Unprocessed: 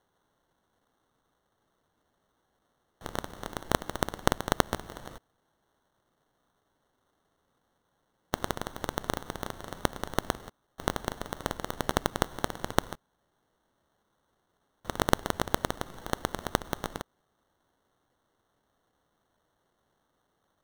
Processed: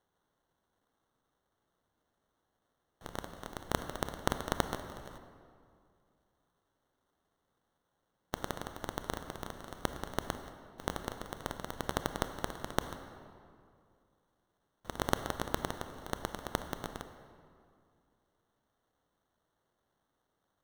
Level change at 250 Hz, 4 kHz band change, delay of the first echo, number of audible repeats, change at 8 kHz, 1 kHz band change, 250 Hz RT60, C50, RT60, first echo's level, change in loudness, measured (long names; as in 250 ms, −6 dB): −6.0 dB, −6.0 dB, no echo audible, no echo audible, −6.0 dB, −6.0 dB, 2.5 s, 9.5 dB, 2.3 s, no echo audible, −6.0 dB